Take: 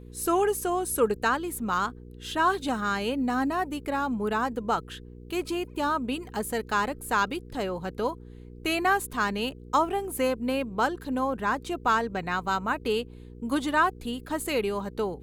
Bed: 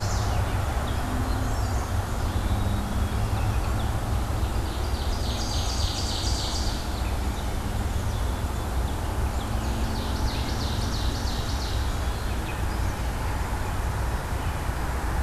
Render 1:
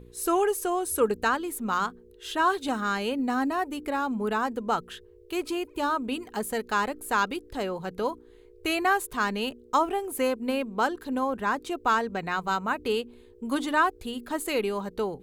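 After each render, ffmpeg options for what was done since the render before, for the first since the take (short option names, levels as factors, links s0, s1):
-af "bandreject=f=60:t=h:w=4,bandreject=f=120:t=h:w=4,bandreject=f=180:t=h:w=4,bandreject=f=240:t=h:w=4,bandreject=f=300:t=h:w=4"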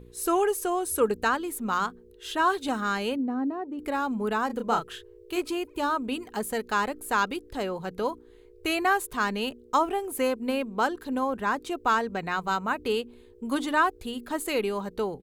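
-filter_complex "[0:a]asettb=1/sr,asplit=3[s0][s1][s2];[s0]atrim=end=3.164[s3];[s1]atrim=start=3.16:end=3.79,asetpts=PTS-STARTPTS,afade=t=in:d=0.004:c=qsin,afade=t=out:st=0.626:d=0.004:c=qsin,bandpass=f=290:t=q:w=0.93[s4];[s2]atrim=start=3.786[s5];[s3][s4]acrossfade=d=0.004:c1=hsin:c2=qsin[s6];[s6][s5]acrossfade=d=0.004:c1=qsin:c2=hsin,asplit=3[s7][s8][s9];[s7]afade=t=out:st=4.49:d=0.02[s10];[s8]asplit=2[s11][s12];[s12]adelay=31,volume=0.562[s13];[s11][s13]amix=inputs=2:normalize=0,afade=t=in:st=4.49:d=0.02,afade=t=out:st=5.4:d=0.02[s14];[s9]afade=t=in:st=5.4:d=0.02[s15];[s10][s14][s15]amix=inputs=3:normalize=0"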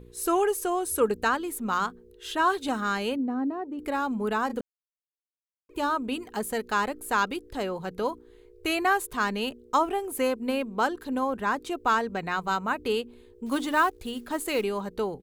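-filter_complex "[0:a]asettb=1/sr,asplit=3[s0][s1][s2];[s0]atrim=end=13.464[s3];[s1]atrim=start=13.46:end=14.64,asetpts=PTS-STARTPTS,afade=t=in:d=0.004:c=qsin,afade=t=out:st=1.176:d=0.004:c=qsin,acrusher=bits=6:mode=log:mix=0:aa=0.000001[s4];[s2]atrim=start=14.636[s5];[s3][s4]acrossfade=d=0.004:c1=hsin:c2=qsin[s6];[s6][s5]acrossfade=d=0.004:c1=qsin:c2=hsin,asplit=3[s7][s8][s9];[s7]atrim=end=4.61,asetpts=PTS-STARTPTS,afade=t=out:st=4.606:d=0.004:c=hsin[s10];[s8]atrim=start=4.61:end=5.69,asetpts=PTS-STARTPTS,volume=0[s11];[s9]atrim=start=5.69,asetpts=PTS-STARTPTS,afade=t=in:d=0.004:c=hsin[s12];[s10][s11][s12]concat=n=3:v=0:a=1"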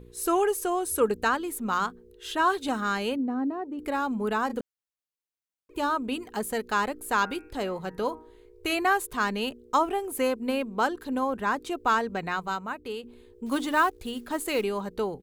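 -filter_complex "[0:a]asplit=3[s0][s1][s2];[s0]afade=t=out:st=7.19:d=0.02[s3];[s1]bandreject=f=157.9:t=h:w=4,bandreject=f=315.8:t=h:w=4,bandreject=f=473.7:t=h:w=4,bandreject=f=631.6:t=h:w=4,bandreject=f=789.5:t=h:w=4,bandreject=f=947.4:t=h:w=4,bandreject=f=1105.3:t=h:w=4,bandreject=f=1263.2:t=h:w=4,bandreject=f=1421.1:t=h:w=4,bandreject=f=1579:t=h:w=4,bandreject=f=1736.9:t=h:w=4,bandreject=f=1894.8:t=h:w=4,bandreject=f=2052.7:t=h:w=4,bandreject=f=2210.6:t=h:w=4,bandreject=f=2368.5:t=h:w=4,bandreject=f=2526.4:t=h:w=4,bandreject=f=2684.3:t=h:w=4,afade=t=in:st=7.19:d=0.02,afade=t=out:st=8.73:d=0.02[s4];[s2]afade=t=in:st=8.73:d=0.02[s5];[s3][s4][s5]amix=inputs=3:normalize=0,asplit=2[s6][s7];[s6]atrim=end=13.03,asetpts=PTS-STARTPTS,afade=t=out:st=12.28:d=0.75:c=qua:silence=0.375837[s8];[s7]atrim=start=13.03,asetpts=PTS-STARTPTS,afade=t=in:d=0.004:c=hsin:silence=0.375837[s9];[s8][s9]concat=n=2:v=0:a=1"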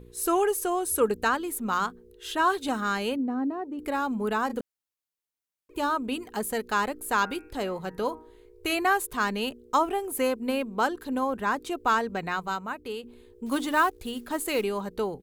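-af "equalizer=f=14000:t=o:w=0.96:g=3.5"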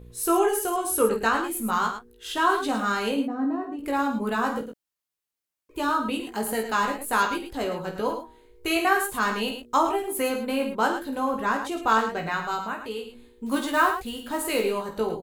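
-filter_complex "[0:a]asplit=2[s0][s1];[s1]adelay=18,volume=0.631[s2];[s0][s2]amix=inputs=2:normalize=0,aecho=1:1:49.56|107.9:0.355|0.355"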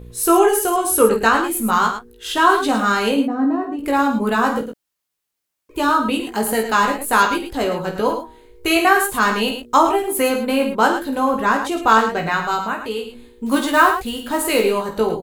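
-af "volume=2.51,alimiter=limit=0.891:level=0:latency=1"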